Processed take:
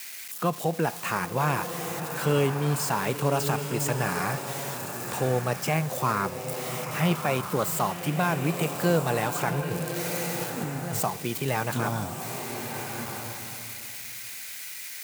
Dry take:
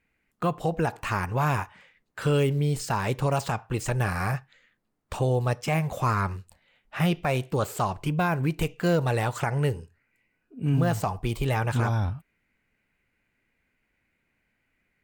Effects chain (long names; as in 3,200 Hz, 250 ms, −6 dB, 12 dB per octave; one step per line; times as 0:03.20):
spike at every zero crossing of −28 dBFS
high-pass filter 140 Hz 24 dB per octave
0:09.61–0:11.04: compressor whose output falls as the input rises −32 dBFS, ratio −1
slow-attack reverb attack 1,300 ms, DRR 5.5 dB